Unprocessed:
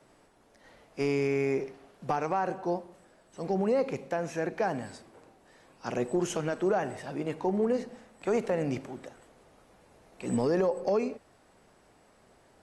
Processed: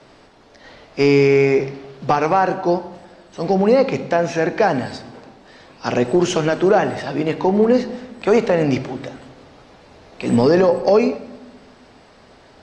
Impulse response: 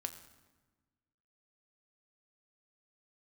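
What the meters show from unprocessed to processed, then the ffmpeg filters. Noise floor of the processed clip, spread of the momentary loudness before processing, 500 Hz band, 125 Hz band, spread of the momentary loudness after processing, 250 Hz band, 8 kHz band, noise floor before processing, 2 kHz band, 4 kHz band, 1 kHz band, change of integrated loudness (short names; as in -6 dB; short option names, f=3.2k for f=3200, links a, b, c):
-48 dBFS, 15 LU, +13.5 dB, +13.5 dB, 16 LU, +13.0 dB, +9.5 dB, -62 dBFS, +14.0 dB, +16.5 dB, +13.0 dB, +13.5 dB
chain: -filter_complex "[0:a]lowpass=f=4.6k:t=q:w=1.7,asplit=2[a][b];[1:a]atrim=start_sample=2205[c];[b][c]afir=irnorm=-1:irlink=0,volume=5.5dB[d];[a][d]amix=inputs=2:normalize=0,volume=5dB"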